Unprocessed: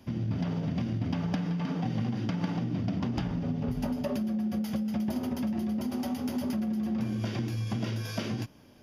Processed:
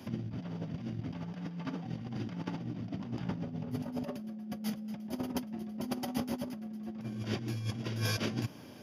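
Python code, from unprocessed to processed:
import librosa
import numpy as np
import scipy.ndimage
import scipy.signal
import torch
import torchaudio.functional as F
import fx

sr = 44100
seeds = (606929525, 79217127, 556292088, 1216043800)

y = scipy.signal.sosfilt(scipy.signal.butter(4, 100.0, 'highpass', fs=sr, output='sos'), x)
y = fx.over_compress(y, sr, threshold_db=-36.0, ratio=-0.5)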